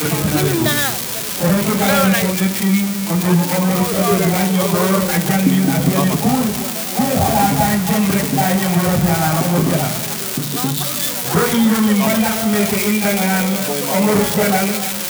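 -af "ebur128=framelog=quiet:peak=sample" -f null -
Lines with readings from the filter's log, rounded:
Integrated loudness:
  I:         -15.7 LUFS
  Threshold: -25.7 LUFS
Loudness range:
  LRA:         1.1 LU
  Threshold: -35.7 LUFS
  LRA low:   -16.3 LUFS
  LRA high:  -15.2 LUFS
Sample peak:
  Peak:       -2.0 dBFS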